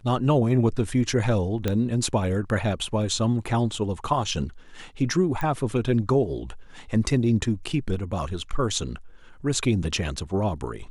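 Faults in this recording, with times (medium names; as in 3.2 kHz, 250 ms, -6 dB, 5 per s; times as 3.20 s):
1.68 s: pop -11 dBFS
5.41 s: pop -17 dBFS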